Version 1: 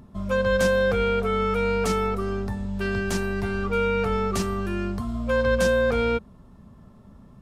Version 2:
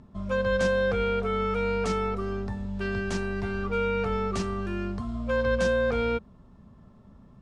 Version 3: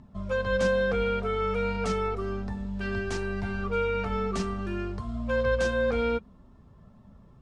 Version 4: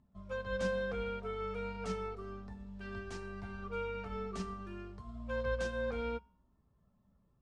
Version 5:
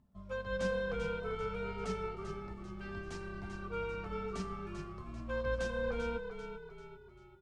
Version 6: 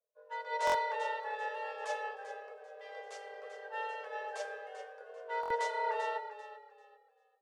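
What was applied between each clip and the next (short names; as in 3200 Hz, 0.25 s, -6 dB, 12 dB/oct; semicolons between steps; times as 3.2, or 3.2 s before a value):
Bessel low-pass 6200 Hz, order 8; gain -3.5 dB
flange 0.57 Hz, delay 1 ms, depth 3.6 ms, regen -47%; gain +3 dB
resonator 62 Hz, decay 0.6 s, harmonics odd, mix 60%; upward expander 1.5:1, over -49 dBFS; gain -2 dB
frequency-shifting echo 0.392 s, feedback 45%, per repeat -34 Hz, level -8 dB
frequency shift +410 Hz; stuck buffer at 0.65/5.41, samples 1024, times 3; three-band expander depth 70%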